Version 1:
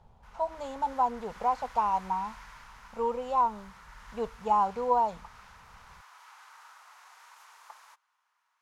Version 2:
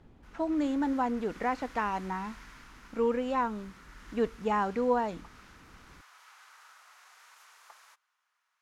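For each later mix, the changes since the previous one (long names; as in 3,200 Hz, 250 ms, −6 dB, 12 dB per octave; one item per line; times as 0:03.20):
speech: remove phaser with its sweep stopped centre 740 Hz, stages 4
master: add parametric band 920 Hz −8.5 dB 0.6 octaves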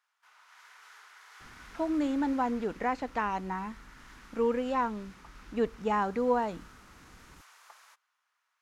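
speech: entry +1.40 s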